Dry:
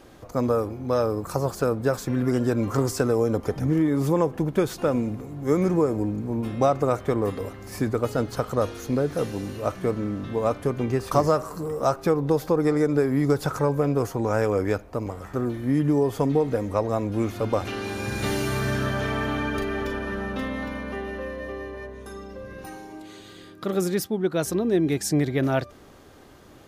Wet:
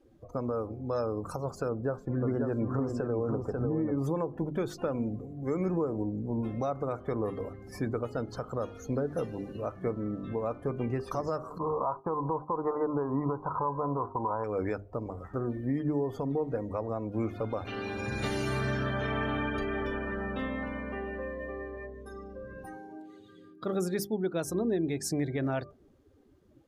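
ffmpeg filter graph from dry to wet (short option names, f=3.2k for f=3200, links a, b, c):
-filter_complex "[0:a]asettb=1/sr,asplit=3[a][b][c];[a]atrim=end=1.684[d];[b]atrim=start=1.68:end=3.98,asetpts=PTS-STARTPTS,afade=t=in:d=0.004:c=qsin,afade=t=out:st=2.296:d=0.004:c=qsin,highshelf=f=2.2k:g=-11,aecho=1:1:542:0.596,atrim=end_sample=101430[e];[c]atrim=start=3.976[f];[d][e]acrossfade=d=0.004:c1=hsin:c2=qsin[g];[g][f]acrossfade=d=0.004:c1=qsin:c2=hsin,asettb=1/sr,asplit=3[h][i][j];[h]atrim=end=11.584[k];[i]atrim=start=11.58:end=14.44,asetpts=PTS-STARTPTS,afade=t=in:d=0.004:c=qsin,afade=t=out:st=2.856:d=0.004:c=qsin,agate=range=-33dB:threshold=-32dB:ratio=3:release=100:detection=peak,lowpass=f=1k:t=q:w=11[l];[j]atrim=start=14.436[m];[k][l]acrossfade=d=0.004:c1=hsin:c2=qsin[n];[n][m]acrossfade=d=0.004:c1=qsin:c2=hsin,bandreject=f=50:t=h:w=6,bandreject=f=100:t=h:w=6,bandreject=f=150:t=h:w=6,bandreject=f=200:t=h:w=6,bandreject=f=250:t=h:w=6,bandreject=f=300:t=h:w=6,bandreject=f=350:t=h:w=6,bandreject=f=400:t=h:w=6,afftdn=nr=20:nf=-40,alimiter=limit=-17dB:level=0:latency=1:release=255,volume=-4dB"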